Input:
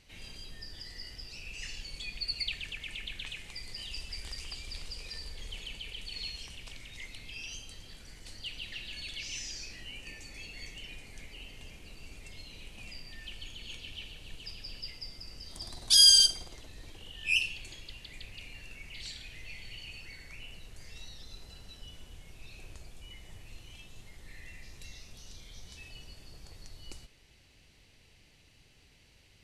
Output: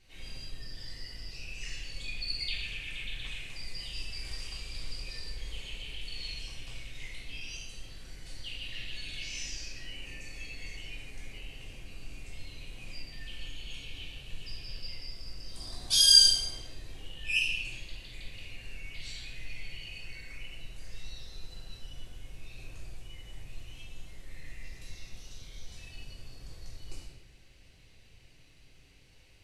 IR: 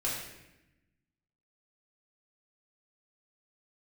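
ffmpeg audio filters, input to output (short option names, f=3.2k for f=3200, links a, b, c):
-filter_complex "[1:a]atrim=start_sample=2205[a];[0:a][a]afir=irnorm=-1:irlink=0,volume=-5dB"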